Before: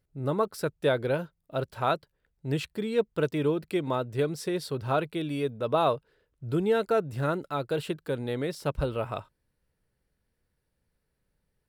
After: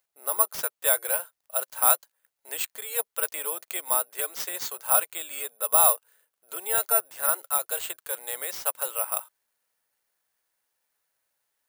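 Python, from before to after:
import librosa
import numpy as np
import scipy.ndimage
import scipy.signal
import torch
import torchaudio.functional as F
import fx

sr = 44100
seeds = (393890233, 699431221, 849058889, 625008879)

y = scipy.signal.sosfilt(scipy.signal.butter(4, 670.0, 'highpass', fs=sr, output='sos'), x)
y = (np.kron(y[::4], np.eye(4)[0]) * 4)[:len(y)]
y = y * 10.0 ** (2.0 / 20.0)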